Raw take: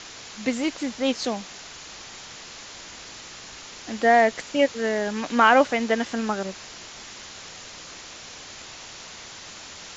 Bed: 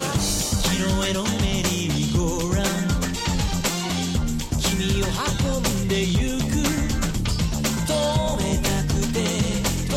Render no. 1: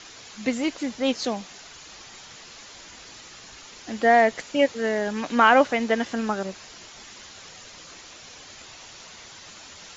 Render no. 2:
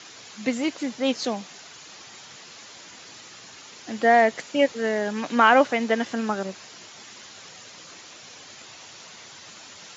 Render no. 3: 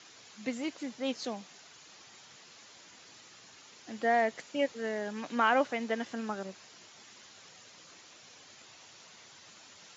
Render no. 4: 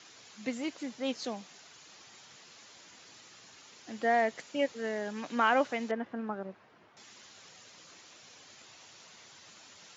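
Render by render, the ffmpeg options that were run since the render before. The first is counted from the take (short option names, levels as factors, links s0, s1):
-af "afftdn=nr=6:nf=-42"
-af "highpass=f=100:w=0.5412,highpass=f=100:w=1.3066"
-af "volume=0.316"
-filter_complex "[0:a]asettb=1/sr,asplit=3[s0][s1][s2];[s0]atrim=end=5.914[s3];[s1]atrim=start=5.91:end=6.97,asetpts=PTS-STARTPTS,afade=t=in:d=0.004:c=qsin,afade=t=out:st=1.056:d=0.004:c=qsin,lowpass=1500[s4];[s2]atrim=start=6.966[s5];[s3][s4]acrossfade=d=0.004:c1=hsin:c2=qsin[s6];[s6][s5]acrossfade=d=0.004:c1=qsin:c2=hsin"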